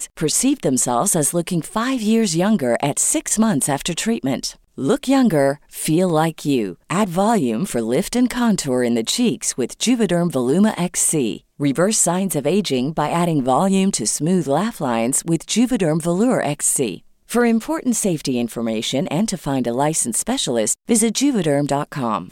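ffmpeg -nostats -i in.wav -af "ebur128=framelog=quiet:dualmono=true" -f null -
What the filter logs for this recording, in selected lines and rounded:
Integrated loudness:
  I:         -15.7 LUFS
  Threshold: -25.7 LUFS
Loudness range:
  LRA:         1.6 LU
  Threshold: -35.7 LUFS
  LRA low:   -16.6 LUFS
  LRA high:  -15.0 LUFS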